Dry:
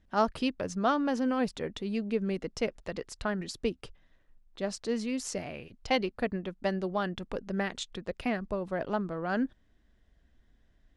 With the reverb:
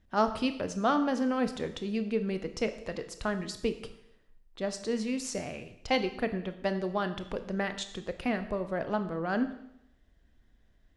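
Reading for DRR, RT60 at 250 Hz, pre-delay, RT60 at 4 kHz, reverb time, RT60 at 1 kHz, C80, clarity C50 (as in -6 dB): 9.0 dB, 0.85 s, 24 ms, 0.80 s, 0.80 s, 0.80 s, 14.0 dB, 12.0 dB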